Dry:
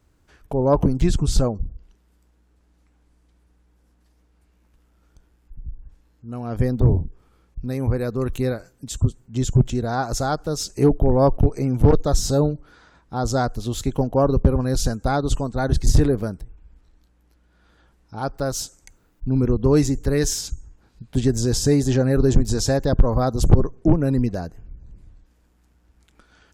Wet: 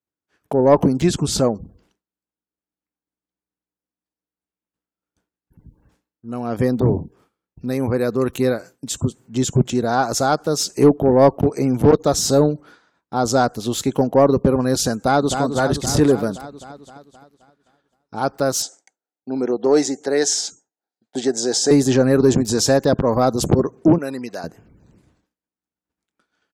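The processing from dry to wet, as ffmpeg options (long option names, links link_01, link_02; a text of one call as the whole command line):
ffmpeg -i in.wav -filter_complex "[0:a]asplit=2[link_01][link_02];[link_02]afade=type=in:start_time=14.95:duration=0.01,afade=type=out:start_time=15.41:duration=0.01,aecho=0:1:260|520|780|1040|1300|1560|1820|2080|2340|2600|2860:0.421697|0.295188|0.206631|0.144642|0.101249|0.0708745|0.0496122|0.0347285|0.02431|0.017017|0.0119119[link_03];[link_01][link_03]amix=inputs=2:normalize=0,asettb=1/sr,asplit=3[link_04][link_05][link_06];[link_04]atrim=end=18.624[link_07];[link_05]atrim=start=18.62:end=21.71,asetpts=PTS-STARTPTS,afade=type=in:duration=0.004:curve=qsin,afade=type=out:start_time=3.086:duration=0.004:curve=qsin,highpass=380,equalizer=frequency=750:width_type=q:width=4:gain=8,equalizer=frequency=1100:width_type=q:width=4:gain=-8,equalizer=frequency=2600:width_type=q:width=4:gain=-7,lowpass=frequency=8400:width=0.5412,lowpass=frequency=8400:width=1.3066[link_08];[link_06]atrim=start=21.706[link_09];[link_07][link_08]acrossfade=duration=0.004:curve1=hsin:curve2=qsin[link_10];[link_10][link_09]acrossfade=duration=0.004:curve1=qsin:curve2=hsin,asettb=1/sr,asplit=3[link_11][link_12][link_13];[link_11]atrim=end=23.984[link_14];[link_12]atrim=start=23.98:end=24.44,asetpts=PTS-STARTPTS,afade=type=in:duration=0.004:curve=qsin,afade=type=out:start_time=0.456:duration=0.004:curve=qsin,highpass=frequency=1100:poles=1[link_15];[link_13]atrim=start=24.436[link_16];[link_14][link_15]acrossfade=duration=0.004:curve1=hsin:curve2=qsin[link_17];[link_17][link_16]acrossfade=duration=0.004:curve1=qsin:curve2=hsin,agate=range=-33dB:threshold=-41dB:ratio=3:detection=peak,highpass=190,acontrast=61" out.wav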